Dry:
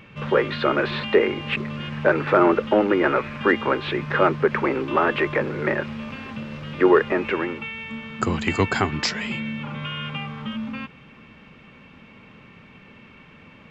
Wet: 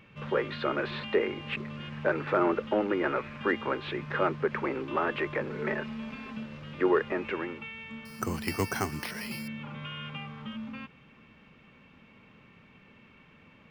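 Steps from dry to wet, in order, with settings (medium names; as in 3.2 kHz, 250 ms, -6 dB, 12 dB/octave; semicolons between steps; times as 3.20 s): 5.50–6.46 s: comb 4.6 ms, depth 71%; 8.05–9.48 s: careless resampling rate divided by 6×, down filtered, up hold; trim -9 dB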